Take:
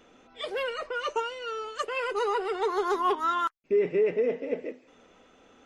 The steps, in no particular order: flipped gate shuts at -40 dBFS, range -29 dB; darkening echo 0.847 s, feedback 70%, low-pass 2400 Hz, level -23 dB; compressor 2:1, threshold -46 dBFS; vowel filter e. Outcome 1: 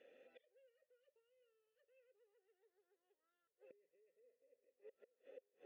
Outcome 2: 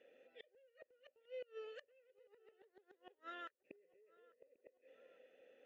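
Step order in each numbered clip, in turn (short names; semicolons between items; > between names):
darkening echo > compressor > flipped gate > vowel filter; vowel filter > compressor > flipped gate > darkening echo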